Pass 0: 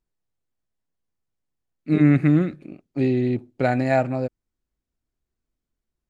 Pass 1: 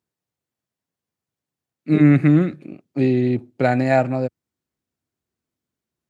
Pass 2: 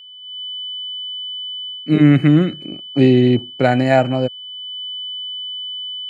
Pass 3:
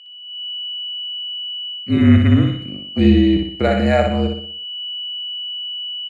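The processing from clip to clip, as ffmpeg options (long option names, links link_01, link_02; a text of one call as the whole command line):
ffmpeg -i in.wav -af "highpass=frequency=89:width=0.5412,highpass=frequency=89:width=1.3066,volume=3dB" out.wav
ffmpeg -i in.wav -af "aeval=exprs='val(0)+0.0141*sin(2*PI*3000*n/s)':channel_layout=same,dynaudnorm=framelen=210:gausssize=3:maxgain=13dB,volume=-1dB" out.wav
ffmpeg -i in.wav -filter_complex "[0:a]afreqshift=-47,asplit=2[link_01][link_02];[link_02]aecho=0:1:61|122|183|244|305|366:0.596|0.268|0.121|0.0543|0.0244|0.011[link_03];[link_01][link_03]amix=inputs=2:normalize=0,volume=-2.5dB" out.wav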